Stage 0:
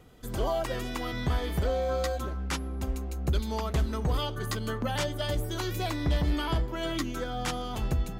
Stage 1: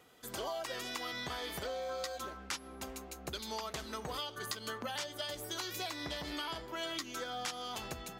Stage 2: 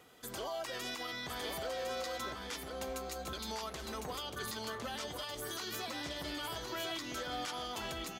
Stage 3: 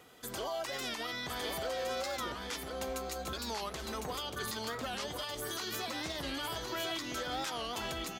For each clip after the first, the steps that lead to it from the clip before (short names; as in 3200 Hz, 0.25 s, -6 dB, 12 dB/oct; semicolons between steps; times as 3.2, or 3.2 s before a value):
HPF 820 Hz 6 dB/oct; dynamic EQ 5100 Hz, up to +5 dB, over -51 dBFS, Q 1.2; compressor, threshold -36 dBFS, peak gain reduction 9 dB
limiter -33.5 dBFS, peak gain reduction 10.5 dB; on a send: echo 1.056 s -4.5 dB; on the sum: gain +2 dB
record warp 45 rpm, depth 160 cents; gain +2.5 dB